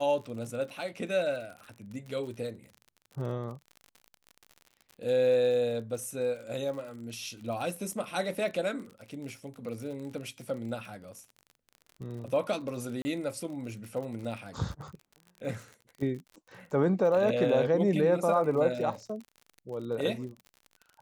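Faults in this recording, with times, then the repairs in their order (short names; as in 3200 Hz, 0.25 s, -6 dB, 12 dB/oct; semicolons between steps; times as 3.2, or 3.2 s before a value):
crackle 46/s -39 dBFS
13.02–13.05 gap 30 ms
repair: de-click; interpolate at 13.02, 30 ms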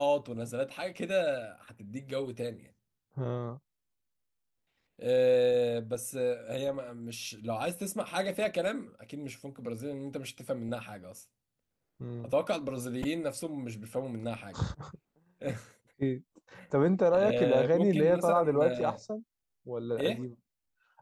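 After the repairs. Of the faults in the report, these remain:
none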